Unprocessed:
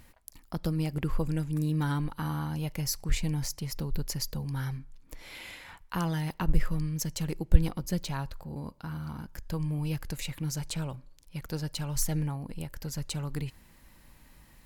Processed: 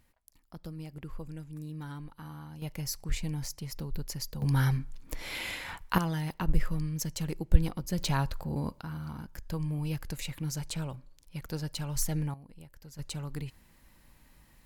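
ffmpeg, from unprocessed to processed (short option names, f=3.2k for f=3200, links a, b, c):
-af "asetnsamples=n=441:p=0,asendcmd='2.62 volume volume -4dB;4.42 volume volume 7.5dB;5.98 volume volume -1.5dB;7.98 volume volume 5.5dB;8.81 volume volume -1.5dB;12.34 volume volume -13dB;12.99 volume volume -3.5dB',volume=-12dB"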